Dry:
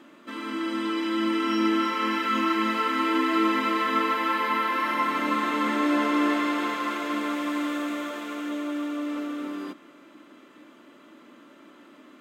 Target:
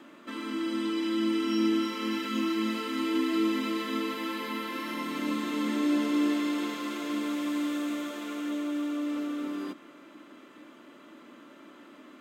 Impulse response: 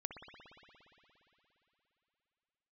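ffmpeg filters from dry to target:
-filter_complex "[0:a]acrossover=split=420|3000[a][b][c];[b]acompressor=threshold=-42dB:ratio=4[d];[a][d][c]amix=inputs=3:normalize=0"

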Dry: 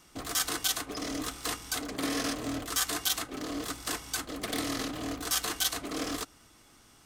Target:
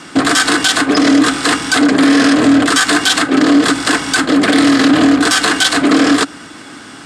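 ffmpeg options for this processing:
-af "aeval=exprs='0.0944*(abs(mod(val(0)/0.0944+3,4)-2)-1)':c=same,highpass=150,equalizer=f=170:t=q:w=4:g=3,equalizer=f=280:t=q:w=4:g=8,equalizer=f=1.6k:t=q:w=4:g=8,equalizer=f=6.1k:t=q:w=4:g=-8,lowpass=f=8.3k:w=0.5412,lowpass=f=8.3k:w=1.3066,alimiter=level_in=26dB:limit=-1dB:release=50:level=0:latency=1,volume=-1dB"

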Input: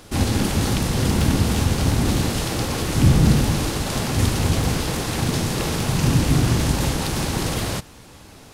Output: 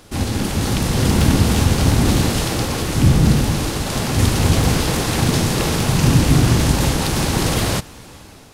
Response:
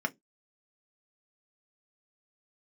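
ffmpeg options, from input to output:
-af "dynaudnorm=f=300:g=5:m=11.5dB,volume=-1dB"

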